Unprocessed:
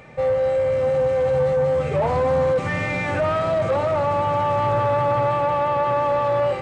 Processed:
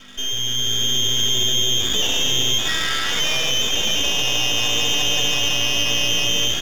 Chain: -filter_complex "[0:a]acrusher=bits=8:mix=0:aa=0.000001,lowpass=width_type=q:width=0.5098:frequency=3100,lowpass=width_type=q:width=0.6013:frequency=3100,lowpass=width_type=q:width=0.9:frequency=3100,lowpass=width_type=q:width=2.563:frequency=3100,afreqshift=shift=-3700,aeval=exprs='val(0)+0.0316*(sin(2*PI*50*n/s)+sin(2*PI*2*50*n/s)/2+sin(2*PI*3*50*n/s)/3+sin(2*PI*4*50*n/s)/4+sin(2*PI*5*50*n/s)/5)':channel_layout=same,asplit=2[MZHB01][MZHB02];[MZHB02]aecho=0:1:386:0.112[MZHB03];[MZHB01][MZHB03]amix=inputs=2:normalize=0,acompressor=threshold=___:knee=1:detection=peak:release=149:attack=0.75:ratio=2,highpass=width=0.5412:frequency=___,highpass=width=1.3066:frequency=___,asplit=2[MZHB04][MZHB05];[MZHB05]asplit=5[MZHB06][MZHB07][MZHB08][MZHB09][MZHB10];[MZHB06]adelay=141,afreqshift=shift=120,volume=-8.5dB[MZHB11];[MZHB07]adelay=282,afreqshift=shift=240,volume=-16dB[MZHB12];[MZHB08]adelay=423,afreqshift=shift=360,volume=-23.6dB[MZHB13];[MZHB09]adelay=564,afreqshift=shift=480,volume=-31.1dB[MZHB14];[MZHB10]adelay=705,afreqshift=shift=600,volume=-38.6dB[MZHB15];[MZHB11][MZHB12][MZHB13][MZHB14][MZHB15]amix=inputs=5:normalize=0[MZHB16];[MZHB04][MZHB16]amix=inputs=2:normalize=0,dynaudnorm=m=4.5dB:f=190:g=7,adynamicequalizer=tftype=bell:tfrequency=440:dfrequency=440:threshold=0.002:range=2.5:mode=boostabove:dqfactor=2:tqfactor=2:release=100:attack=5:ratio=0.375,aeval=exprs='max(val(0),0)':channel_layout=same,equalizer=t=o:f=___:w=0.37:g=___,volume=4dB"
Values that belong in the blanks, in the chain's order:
-24dB, 270, 270, 1800, 3